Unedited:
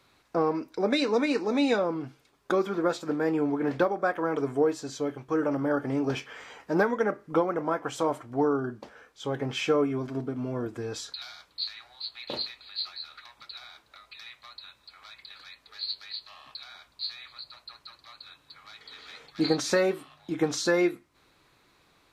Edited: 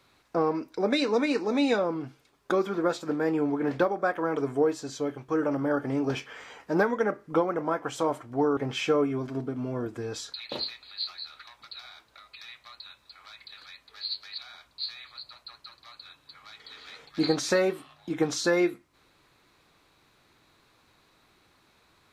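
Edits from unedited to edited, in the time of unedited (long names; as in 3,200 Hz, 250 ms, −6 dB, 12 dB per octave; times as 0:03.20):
0:08.57–0:09.37: remove
0:11.20–0:12.18: remove
0:16.16–0:16.59: remove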